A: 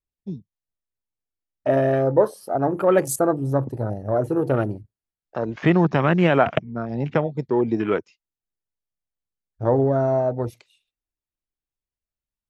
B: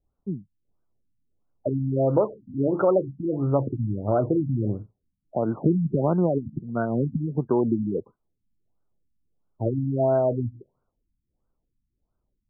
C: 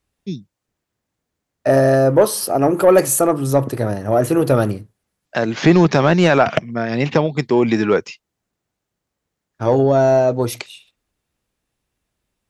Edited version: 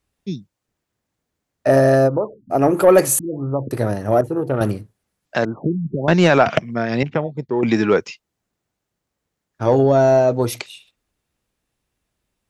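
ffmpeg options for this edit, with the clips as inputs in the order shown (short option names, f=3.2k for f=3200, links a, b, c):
-filter_complex "[1:a]asplit=3[a][b][c];[0:a]asplit=2[d][e];[2:a]asplit=6[f][g][h][i][j][k];[f]atrim=end=2.1[l];[a]atrim=start=2.06:end=2.54[m];[g]atrim=start=2.5:end=3.192[n];[b]atrim=start=3.188:end=3.712[o];[h]atrim=start=3.708:end=4.212[p];[d]atrim=start=4.208:end=4.612[q];[i]atrim=start=4.608:end=5.452[r];[c]atrim=start=5.448:end=6.082[s];[j]atrim=start=6.078:end=7.032[t];[e]atrim=start=7.028:end=7.632[u];[k]atrim=start=7.628[v];[l][m]acrossfade=d=0.04:c1=tri:c2=tri[w];[w][n]acrossfade=d=0.04:c1=tri:c2=tri[x];[x][o]acrossfade=d=0.004:c1=hsin:c2=hsin[y];[y][p]acrossfade=d=0.004:c1=hsin:c2=hsin[z];[z][q]acrossfade=d=0.004:c1=hsin:c2=hsin[aa];[aa][r]acrossfade=d=0.004:c1=hsin:c2=hsin[ab];[ab][s]acrossfade=d=0.004:c1=hsin:c2=hsin[ac];[ac][t]acrossfade=d=0.004:c1=hsin:c2=hsin[ad];[ad][u]acrossfade=d=0.004:c1=hsin:c2=hsin[ae];[ae][v]acrossfade=d=0.004:c1=hsin:c2=hsin"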